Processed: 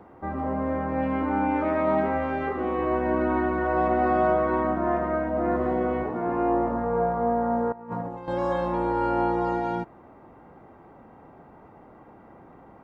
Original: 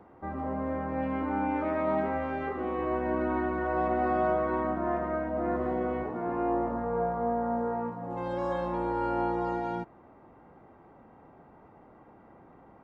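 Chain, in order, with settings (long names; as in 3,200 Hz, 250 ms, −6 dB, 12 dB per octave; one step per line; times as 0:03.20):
0:07.72–0:08.28: compressor whose output falls as the input rises −39 dBFS, ratio −0.5
level +5 dB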